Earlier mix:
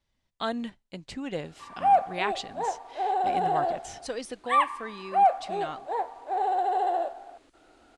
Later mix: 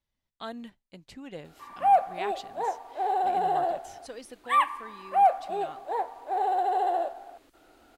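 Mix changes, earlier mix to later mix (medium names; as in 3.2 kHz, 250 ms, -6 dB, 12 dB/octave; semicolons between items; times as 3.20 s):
speech -8.0 dB; master: remove steep low-pass 9.8 kHz 36 dB/octave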